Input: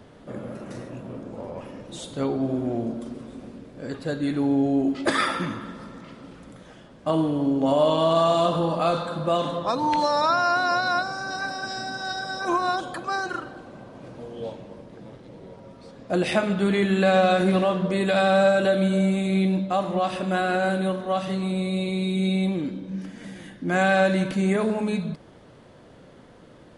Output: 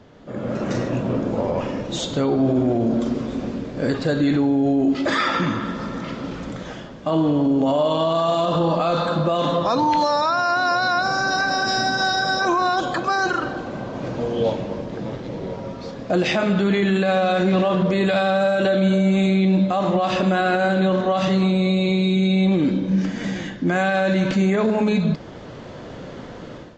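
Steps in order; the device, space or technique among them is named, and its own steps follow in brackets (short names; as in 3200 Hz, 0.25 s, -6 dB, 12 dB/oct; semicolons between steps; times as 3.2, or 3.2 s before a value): low-bitrate web radio (AGC gain up to 14 dB; limiter -11.5 dBFS, peak gain reduction 10.5 dB; AAC 48 kbps 16000 Hz)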